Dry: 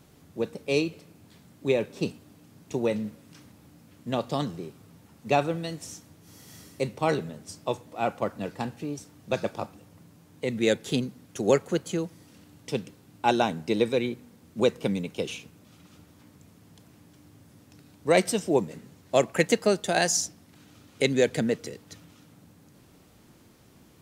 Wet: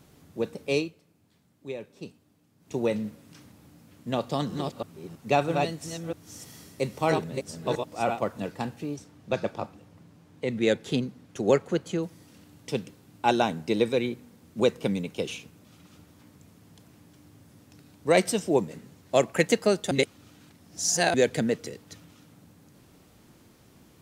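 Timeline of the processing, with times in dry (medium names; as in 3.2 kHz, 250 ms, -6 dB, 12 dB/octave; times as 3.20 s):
0.73–2.79 s: dip -12 dB, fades 0.20 s
4.18–8.46 s: chunks repeated in reverse 325 ms, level -4 dB
8.96–12.03 s: treble shelf 7.4 kHz -11.5 dB
19.91–21.14 s: reverse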